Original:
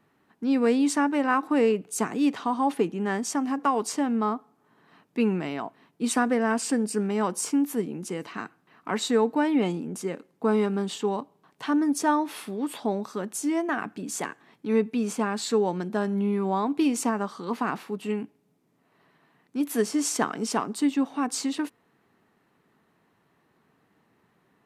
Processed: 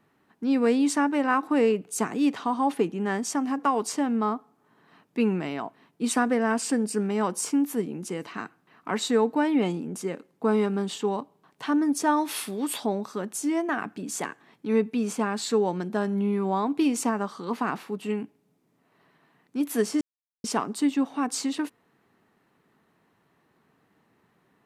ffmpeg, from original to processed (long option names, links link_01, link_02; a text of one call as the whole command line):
ffmpeg -i in.wav -filter_complex "[0:a]asplit=3[link_01][link_02][link_03];[link_01]afade=type=out:start_time=12.16:duration=0.02[link_04];[link_02]highshelf=frequency=2600:gain=10.5,afade=type=in:start_time=12.16:duration=0.02,afade=type=out:start_time=12.84:duration=0.02[link_05];[link_03]afade=type=in:start_time=12.84:duration=0.02[link_06];[link_04][link_05][link_06]amix=inputs=3:normalize=0,asplit=3[link_07][link_08][link_09];[link_07]atrim=end=20.01,asetpts=PTS-STARTPTS,afade=type=out:start_time=20.006:duration=0.004:curve=hsin[link_10];[link_08]atrim=start=20.01:end=20.44,asetpts=PTS-STARTPTS,volume=0[link_11];[link_09]atrim=start=20.44,asetpts=PTS-STARTPTS,afade=type=in:duration=0.004:curve=hsin[link_12];[link_10][link_11][link_12]concat=n=3:v=0:a=1" out.wav